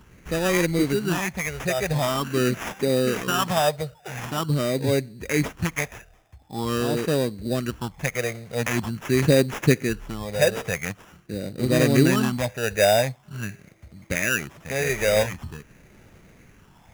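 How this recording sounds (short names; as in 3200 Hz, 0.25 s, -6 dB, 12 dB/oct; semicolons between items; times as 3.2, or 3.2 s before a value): phasing stages 6, 0.45 Hz, lowest notch 280–1300 Hz; aliases and images of a low sample rate 4300 Hz, jitter 0%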